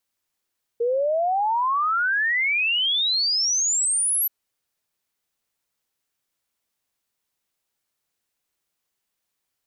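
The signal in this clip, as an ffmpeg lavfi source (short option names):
-f lavfi -i "aevalsrc='0.112*clip(min(t,3.48-t)/0.01,0,1)*sin(2*PI*460*3.48/log(12000/460)*(exp(log(12000/460)*t/3.48)-1))':d=3.48:s=44100"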